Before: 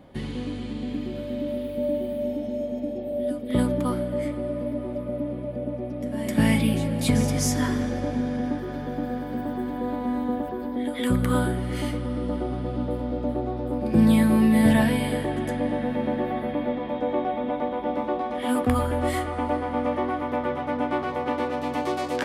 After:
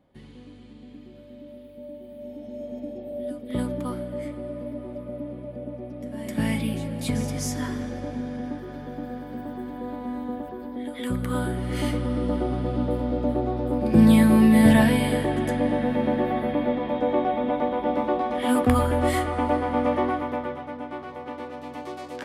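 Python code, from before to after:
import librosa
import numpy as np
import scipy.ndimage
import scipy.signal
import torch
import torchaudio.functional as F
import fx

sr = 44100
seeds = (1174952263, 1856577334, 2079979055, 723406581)

y = fx.gain(x, sr, db=fx.line((1.99, -14.5), (2.74, -5.0), (11.28, -5.0), (11.87, 2.5), (20.07, 2.5), (20.78, -9.0)))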